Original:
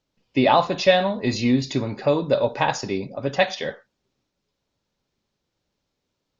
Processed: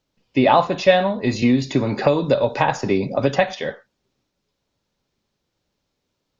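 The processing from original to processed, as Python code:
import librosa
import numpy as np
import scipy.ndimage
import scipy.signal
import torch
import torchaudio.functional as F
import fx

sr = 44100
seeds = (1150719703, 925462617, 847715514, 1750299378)

y = fx.dynamic_eq(x, sr, hz=4700.0, q=1.2, threshold_db=-40.0, ratio=4.0, max_db=-6)
y = fx.band_squash(y, sr, depth_pct=100, at=(1.42, 3.53))
y = y * 10.0 ** (2.5 / 20.0)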